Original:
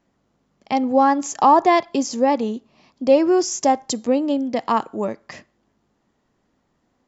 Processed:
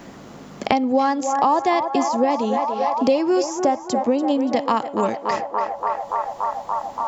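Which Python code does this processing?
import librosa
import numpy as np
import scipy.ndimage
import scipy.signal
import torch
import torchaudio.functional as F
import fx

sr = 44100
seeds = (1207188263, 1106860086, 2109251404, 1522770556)

p1 = x + fx.echo_banded(x, sr, ms=287, feedback_pct=75, hz=910.0, wet_db=-8.5, dry=0)
p2 = fx.band_squash(p1, sr, depth_pct=100)
y = p2 * librosa.db_to_amplitude(-2.0)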